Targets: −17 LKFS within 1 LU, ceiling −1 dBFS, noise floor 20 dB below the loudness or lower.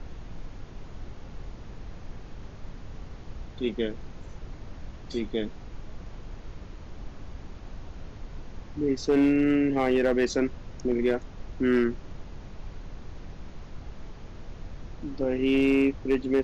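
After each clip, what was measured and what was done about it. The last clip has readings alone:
share of clipped samples 0.3%; peaks flattened at −16.0 dBFS; background noise floor −44 dBFS; target noise floor −47 dBFS; integrated loudness −26.5 LKFS; sample peak −16.0 dBFS; target loudness −17.0 LKFS
→ clipped peaks rebuilt −16 dBFS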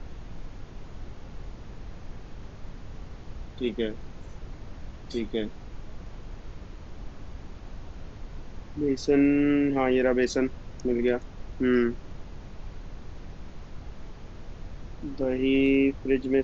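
share of clipped samples 0.0%; background noise floor −44 dBFS; target noise floor −46 dBFS
→ noise reduction from a noise print 6 dB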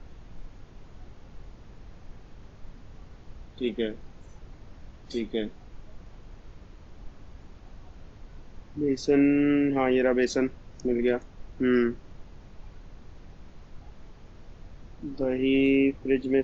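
background noise floor −50 dBFS; integrated loudness −26.0 LKFS; sample peak −12.0 dBFS; target loudness −17.0 LKFS
→ level +9 dB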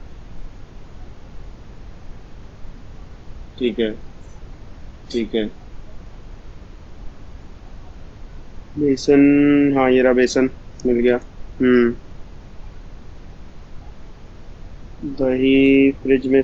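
integrated loudness −17.0 LKFS; sample peak −3.0 dBFS; background noise floor −41 dBFS

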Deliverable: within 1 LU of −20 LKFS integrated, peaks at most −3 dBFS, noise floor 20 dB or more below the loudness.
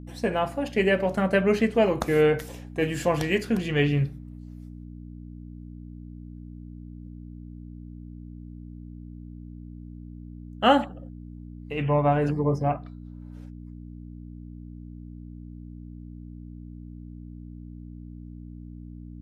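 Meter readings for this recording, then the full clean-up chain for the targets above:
mains hum 60 Hz; hum harmonics up to 300 Hz; level of the hum −38 dBFS; integrated loudness −24.5 LKFS; sample peak −6.5 dBFS; target loudness −20.0 LKFS
→ hum removal 60 Hz, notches 5
level +4.5 dB
brickwall limiter −3 dBFS

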